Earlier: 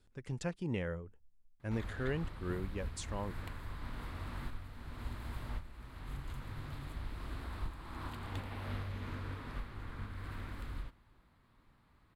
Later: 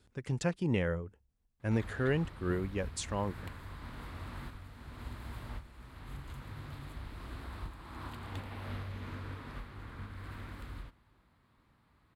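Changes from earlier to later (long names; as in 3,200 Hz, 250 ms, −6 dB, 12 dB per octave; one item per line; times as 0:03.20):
speech +6.0 dB
master: add high-pass filter 45 Hz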